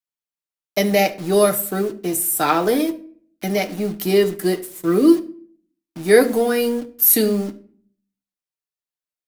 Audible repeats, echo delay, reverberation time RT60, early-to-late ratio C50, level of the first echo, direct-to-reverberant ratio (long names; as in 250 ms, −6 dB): no echo audible, no echo audible, 0.50 s, 16.0 dB, no echo audible, 5.0 dB